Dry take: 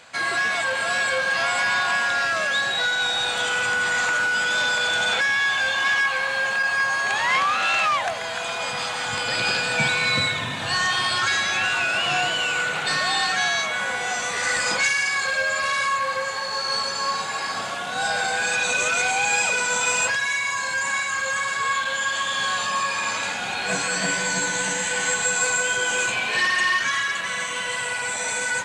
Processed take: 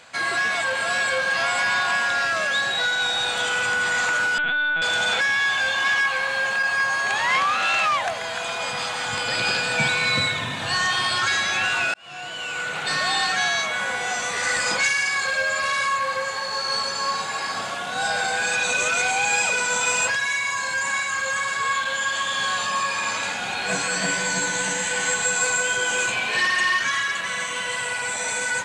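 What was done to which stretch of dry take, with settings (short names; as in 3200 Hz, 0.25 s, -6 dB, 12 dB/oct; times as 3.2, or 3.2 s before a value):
4.38–4.82 LPC vocoder at 8 kHz pitch kept
11.94–13.05 fade in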